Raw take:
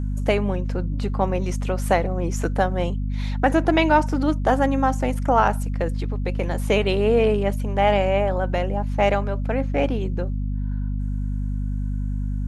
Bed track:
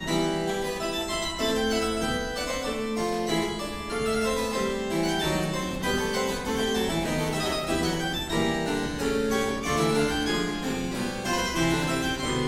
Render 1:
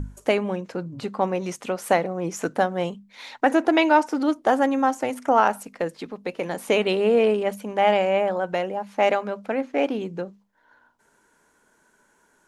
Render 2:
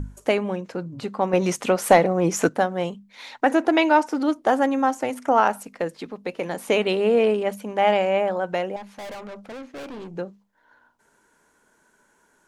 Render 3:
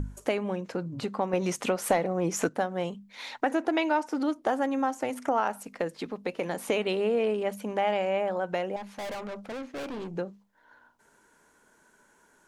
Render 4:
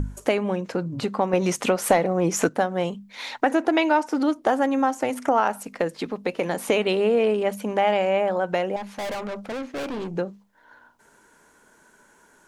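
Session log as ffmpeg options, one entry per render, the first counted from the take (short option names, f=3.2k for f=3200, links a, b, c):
-af "bandreject=f=50:t=h:w=6,bandreject=f=100:t=h:w=6,bandreject=f=150:t=h:w=6,bandreject=f=200:t=h:w=6,bandreject=f=250:t=h:w=6"
-filter_complex "[0:a]asettb=1/sr,asplit=3[a][b][c];[a]atrim=end=1.334[d];[b]atrim=start=1.33:end=2.49,asetpts=PTS-STARTPTS,afade=t=in:d=0.004:c=qsin,afade=t=out:st=1.156:d=0.004:c=qsin,acontrast=86[e];[c]atrim=start=2.486[f];[d][e]acrossfade=d=0.004:c1=hsin:c2=qsin[g];[g][f]acrossfade=d=0.004:c1=qsin:c2=hsin,asettb=1/sr,asplit=3[h][i][j];[h]atrim=end=8.764[k];[i]atrim=start=8.76:end=10.16,asetpts=PTS-STARTPTS,afade=t=in:d=0.004:c=qsin,afade=t=out:st=1.396:d=0.004:c=qsin,aeval=exprs='(tanh(50.1*val(0)+0.35)-tanh(0.35))/50.1':c=same[l];[j]atrim=start=10.156[m];[k][l]acrossfade=d=0.004:c1=hsin:c2=qsin[n];[n][m]acrossfade=d=0.004:c1=qsin:c2=hsin"
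-af "acompressor=threshold=-29dB:ratio=2"
-af "volume=6dB"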